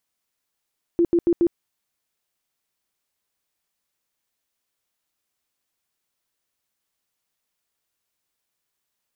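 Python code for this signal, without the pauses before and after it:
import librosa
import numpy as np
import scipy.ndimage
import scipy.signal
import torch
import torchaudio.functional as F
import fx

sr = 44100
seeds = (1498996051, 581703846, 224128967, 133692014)

y = fx.tone_burst(sr, hz=342.0, cycles=20, every_s=0.14, bursts=4, level_db=-14.0)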